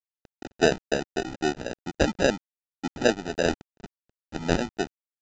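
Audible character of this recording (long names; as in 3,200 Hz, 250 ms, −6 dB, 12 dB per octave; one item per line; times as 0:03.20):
a quantiser's noise floor 6 bits, dither none
phaser sweep stages 12, 3.6 Hz, lowest notch 520–2,200 Hz
aliases and images of a low sample rate 1,100 Hz, jitter 0%
mu-law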